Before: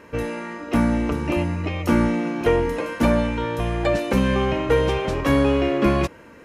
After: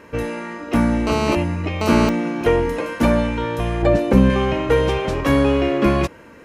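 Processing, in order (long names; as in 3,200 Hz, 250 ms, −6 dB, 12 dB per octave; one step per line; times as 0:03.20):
0:01.07–0:02.09: phone interference −23 dBFS
0:03.82–0:04.30: tilt shelving filter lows +5.5 dB
level +2 dB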